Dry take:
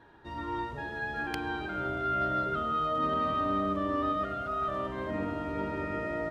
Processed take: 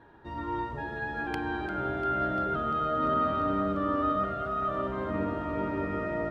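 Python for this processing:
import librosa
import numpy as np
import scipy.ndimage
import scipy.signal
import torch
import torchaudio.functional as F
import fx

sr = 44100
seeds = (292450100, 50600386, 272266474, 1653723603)

y = fx.high_shelf(x, sr, hz=2600.0, db=-9.5)
y = fx.echo_alternate(y, sr, ms=173, hz=1300.0, feedback_pct=88, wet_db=-13)
y = F.gain(torch.from_numpy(y), 2.5).numpy()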